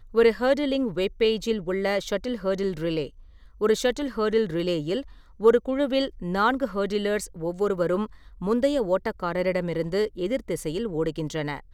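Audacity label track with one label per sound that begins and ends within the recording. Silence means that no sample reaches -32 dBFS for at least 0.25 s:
3.610000	5.020000	sound
5.410000	8.060000	sound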